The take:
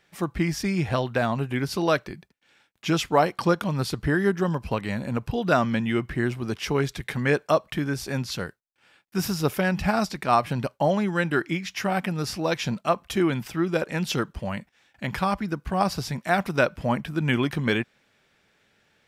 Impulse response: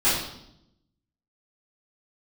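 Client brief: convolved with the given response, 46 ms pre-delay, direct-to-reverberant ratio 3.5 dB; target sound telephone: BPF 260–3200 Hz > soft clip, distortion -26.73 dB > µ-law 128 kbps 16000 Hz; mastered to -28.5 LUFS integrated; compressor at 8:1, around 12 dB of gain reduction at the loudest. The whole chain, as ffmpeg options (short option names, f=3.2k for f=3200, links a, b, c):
-filter_complex "[0:a]acompressor=threshold=-28dB:ratio=8,asplit=2[a][b];[1:a]atrim=start_sample=2205,adelay=46[c];[b][c]afir=irnorm=-1:irlink=0,volume=-19.5dB[d];[a][d]amix=inputs=2:normalize=0,highpass=260,lowpass=3.2k,asoftclip=threshold=-17.5dB,volume=6dB" -ar 16000 -c:a pcm_mulaw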